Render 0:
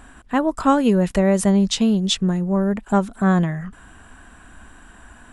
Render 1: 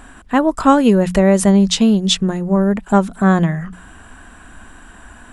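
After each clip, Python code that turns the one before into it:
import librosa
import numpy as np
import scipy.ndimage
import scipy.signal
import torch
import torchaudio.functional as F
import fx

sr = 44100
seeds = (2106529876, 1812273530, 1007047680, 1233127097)

y = fx.hum_notches(x, sr, base_hz=60, count=3)
y = y * 10.0 ** (5.0 / 20.0)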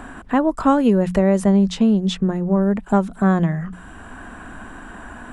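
y = fx.high_shelf(x, sr, hz=2200.0, db=-9.0)
y = fx.band_squash(y, sr, depth_pct=40)
y = y * 10.0 ** (-3.0 / 20.0)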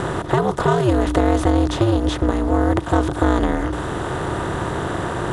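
y = fx.bin_compress(x, sr, power=0.4)
y = y * np.sin(2.0 * np.pi * 120.0 * np.arange(len(y)) / sr)
y = y * 10.0 ** (-1.0 / 20.0)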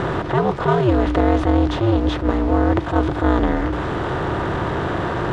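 y = x + 0.5 * 10.0 ** (-29.0 / 20.0) * np.sign(x)
y = scipy.signal.sosfilt(scipy.signal.butter(2, 3500.0, 'lowpass', fs=sr, output='sos'), y)
y = fx.attack_slew(y, sr, db_per_s=170.0)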